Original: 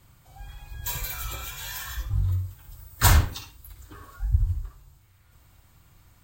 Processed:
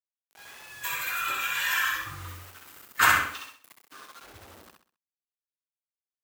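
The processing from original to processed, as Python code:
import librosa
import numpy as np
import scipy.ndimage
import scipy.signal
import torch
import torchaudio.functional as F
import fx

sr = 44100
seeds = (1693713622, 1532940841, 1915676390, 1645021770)

y = fx.doppler_pass(x, sr, speed_mps=10, closest_m=5.5, pass_at_s=1.85)
y = fx.wow_flutter(y, sr, seeds[0], rate_hz=2.1, depth_cents=28.0)
y = fx.band_shelf(y, sr, hz=1800.0, db=12.5, octaves=1.7)
y = fx.quant_dither(y, sr, seeds[1], bits=8, dither='none')
y = scipy.signal.sosfilt(scipy.signal.cheby1(2, 1.0, 300.0, 'highpass', fs=sr, output='sos'), y)
y = fx.echo_feedback(y, sr, ms=65, feedback_pct=34, wet_db=-4.5)
y = y * librosa.db_to_amplitude(2.0)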